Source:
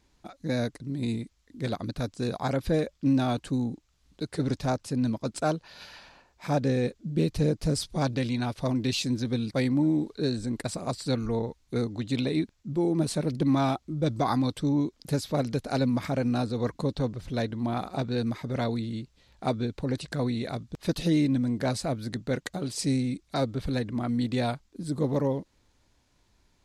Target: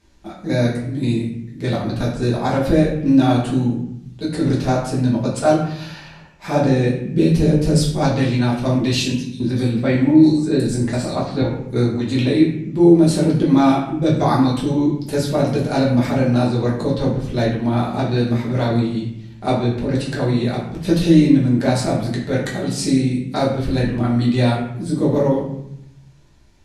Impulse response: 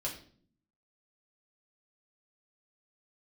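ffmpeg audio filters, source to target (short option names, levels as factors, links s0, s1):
-filter_complex "[0:a]asettb=1/sr,asplit=3[s0][s1][s2];[s0]atrim=end=9.124[s3];[s1]atrim=start=9.12:end=11.42,asetpts=PTS-STARTPTS,afade=t=in:d=0.004:c=qsin,afade=t=out:st=2.296:d=0.004:c=qsin,acrossover=split=4000[s4][s5];[s4]adelay=280[s6];[s6][s5]amix=inputs=2:normalize=0,atrim=end_sample=101430[s7];[s2]atrim=start=11.416[s8];[s3][s7]acrossfade=d=0.004:c1=hsin:c2=qsin[s9];[s9][s8]acrossfade=d=0.004:c1=qsin:c2=hsin[s10];[1:a]atrim=start_sample=2205,asetrate=25578,aresample=44100[s11];[s10][s11]afir=irnorm=-1:irlink=0,volume=1.58"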